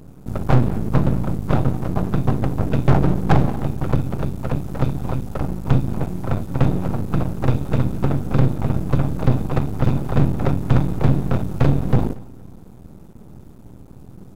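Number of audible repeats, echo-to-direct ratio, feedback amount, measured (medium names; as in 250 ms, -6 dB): 2, -21.5 dB, 34%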